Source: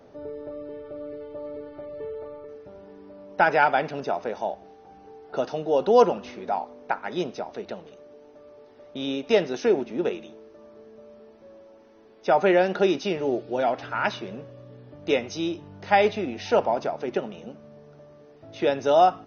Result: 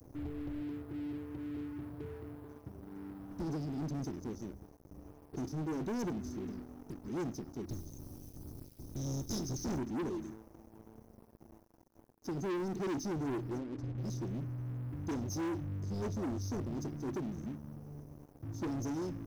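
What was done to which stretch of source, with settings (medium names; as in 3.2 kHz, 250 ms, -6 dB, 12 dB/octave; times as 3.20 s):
0.61–3.20 s: high-pass 89 Hz
7.69–9.77 s: spectral peaks clipped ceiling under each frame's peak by 26 dB
13.58–13.98 s: resonances exaggerated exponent 1.5
whole clip: inverse Chebyshev band-stop 740–2600 Hz, stop band 80 dB; resonant low shelf 250 Hz -9 dB, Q 3; waveshaping leveller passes 5; trim +3.5 dB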